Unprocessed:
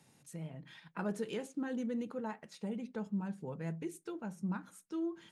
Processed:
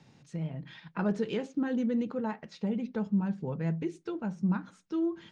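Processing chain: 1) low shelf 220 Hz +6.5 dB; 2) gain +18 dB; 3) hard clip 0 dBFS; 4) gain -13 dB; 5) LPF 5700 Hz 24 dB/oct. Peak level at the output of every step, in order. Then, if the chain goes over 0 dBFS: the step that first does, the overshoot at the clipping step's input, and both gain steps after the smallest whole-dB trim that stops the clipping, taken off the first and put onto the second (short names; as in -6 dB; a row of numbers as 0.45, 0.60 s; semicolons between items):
-23.5, -5.5, -5.5, -18.5, -18.5 dBFS; no overload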